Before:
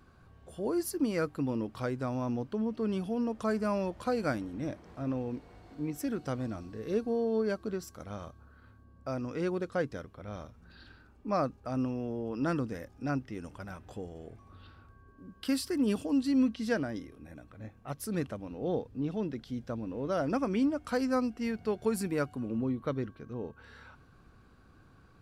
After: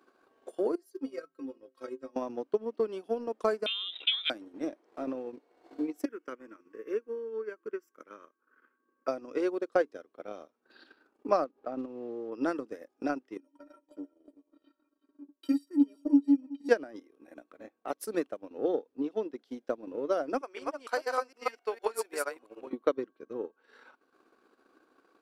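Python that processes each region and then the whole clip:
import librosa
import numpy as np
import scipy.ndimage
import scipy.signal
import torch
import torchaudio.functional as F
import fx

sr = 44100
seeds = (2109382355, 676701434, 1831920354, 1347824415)

y = fx.chain(x, sr, fx.peak_eq(hz=810.0, db=-11.5, octaves=0.35),
    fx.stiff_resonator(f0_hz=79.0, decay_s=0.37, stiffness=0.03), at=(0.75, 2.16))
y = fx.chain(y, sr, fx.freq_invert(carrier_hz=3800),
    fx.sustainer(db_per_s=53.0), at=(3.66, 4.3))
y = fx.chain(y, sr, fx.highpass(hz=340.0, slope=12),
    fx.peak_eq(hz=9300.0, db=-11.0, octaves=0.65),
    fx.fixed_phaser(hz=1700.0, stages=4), at=(6.05, 9.08))
y = fx.chain(y, sr, fx.block_float(bits=5),
    fx.spacing_loss(db_at_10k=31),
    fx.pre_swell(db_per_s=110.0), at=(11.44, 12.32))
y = fx.chain(y, sr, fx.peak_eq(hz=320.0, db=10.5, octaves=0.72),
    fx.stiff_resonator(f0_hz=280.0, decay_s=0.2, stiffness=0.03),
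    fx.echo_single(ms=363, db=-12.5), at=(13.37, 16.69))
y = fx.chain(y, sr, fx.reverse_delay(ms=153, wet_db=-0.5),
    fx.highpass(hz=720.0, slope=12), at=(20.41, 22.73))
y = scipy.signal.sosfilt(scipy.signal.cheby2(4, 40, 160.0, 'highpass', fs=sr, output='sos'), y)
y = fx.low_shelf(y, sr, hz=460.0, db=9.5)
y = fx.transient(y, sr, attack_db=10, sustain_db=-11)
y = y * librosa.db_to_amplitude(-4.5)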